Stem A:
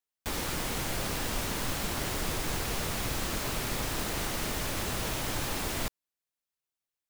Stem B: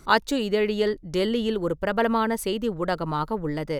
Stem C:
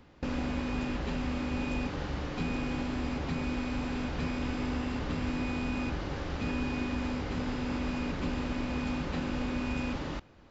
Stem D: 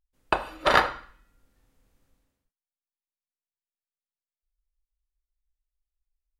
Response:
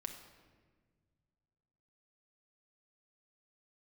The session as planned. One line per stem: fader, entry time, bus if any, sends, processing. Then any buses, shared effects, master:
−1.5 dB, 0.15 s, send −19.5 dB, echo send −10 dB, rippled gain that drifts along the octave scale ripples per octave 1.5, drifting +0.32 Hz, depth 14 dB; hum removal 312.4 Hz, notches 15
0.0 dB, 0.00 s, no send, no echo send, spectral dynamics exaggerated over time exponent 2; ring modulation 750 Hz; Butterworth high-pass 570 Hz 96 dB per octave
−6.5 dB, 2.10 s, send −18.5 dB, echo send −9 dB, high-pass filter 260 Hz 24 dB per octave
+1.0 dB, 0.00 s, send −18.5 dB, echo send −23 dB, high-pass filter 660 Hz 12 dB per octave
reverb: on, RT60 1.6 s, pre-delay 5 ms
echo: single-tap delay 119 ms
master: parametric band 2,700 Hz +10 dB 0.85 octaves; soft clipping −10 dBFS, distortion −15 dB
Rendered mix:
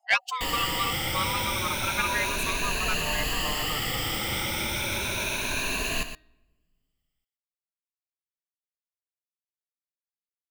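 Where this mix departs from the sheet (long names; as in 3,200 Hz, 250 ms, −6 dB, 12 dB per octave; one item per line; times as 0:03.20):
stem C: muted
stem D: muted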